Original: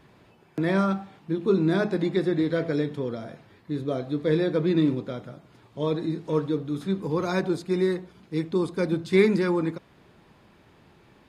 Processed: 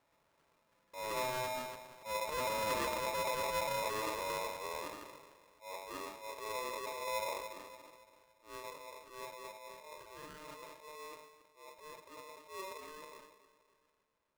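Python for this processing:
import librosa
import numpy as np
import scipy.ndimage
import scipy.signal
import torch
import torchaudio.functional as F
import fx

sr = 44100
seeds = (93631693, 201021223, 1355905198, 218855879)

p1 = fx.speed_glide(x, sr, from_pct=57, to_pct=100)
p2 = fx.doppler_pass(p1, sr, speed_mps=20, closest_m=22.0, pass_at_s=3.01)
p3 = fx.dynamic_eq(p2, sr, hz=180.0, q=0.73, threshold_db=-36.0, ratio=4.0, max_db=5)
p4 = 10.0 ** (-24.0 / 20.0) * np.tanh(p3 / 10.0 ** (-24.0 / 20.0))
p5 = p4 + fx.echo_feedback(p4, sr, ms=283, feedback_pct=48, wet_db=-17.0, dry=0)
p6 = fx.transient(p5, sr, attack_db=-9, sustain_db=10)
p7 = scipy.signal.sosfilt(scipy.signal.butter(2, 1500.0, 'lowpass', fs=sr, output='sos'), p6)
p8 = fx.low_shelf(p7, sr, hz=87.0, db=-9.0)
p9 = fx.comb_fb(p8, sr, f0_hz=120.0, decay_s=1.1, harmonics='all', damping=0.0, mix_pct=70)
p10 = p9 * np.sign(np.sin(2.0 * np.pi * 760.0 * np.arange(len(p9)) / sr))
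y = p10 * librosa.db_to_amplitude(1.5)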